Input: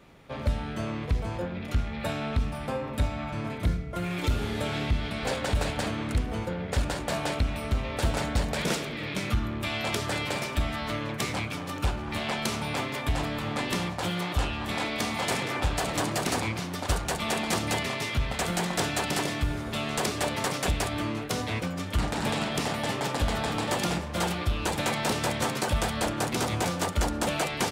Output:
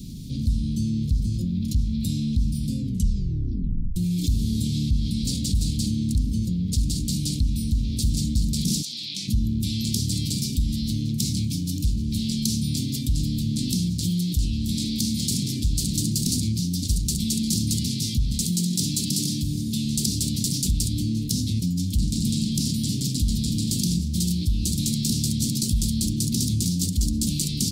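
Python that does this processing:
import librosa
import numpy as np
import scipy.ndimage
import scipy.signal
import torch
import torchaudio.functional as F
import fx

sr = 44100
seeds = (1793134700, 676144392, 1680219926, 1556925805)

y = fx.bandpass_q(x, sr, hz=fx.line((8.81, 7100.0), (9.27, 2000.0)), q=1.0, at=(8.81, 9.27), fade=0.02)
y = fx.highpass(y, sr, hz=130.0, slope=12, at=(18.41, 19.85))
y = fx.edit(y, sr, fx.tape_stop(start_s=2.78, length_s=1.18), tone=tone)
y = scipy.signal.sosfilt(scipy.signal.ellip(3, 1.0, 70, [230.0, 4400.0], 'bandstop', fs=sr, output='sos'), y)
y = fx.peak_eq(y, sr, hz=2000.0, db=-2.5, octaves=2.1)
y = fx.env_flatten(y, sr, amount_pct=50)
y = F.gain(torch.from_numpy(y), 3.5).numpy()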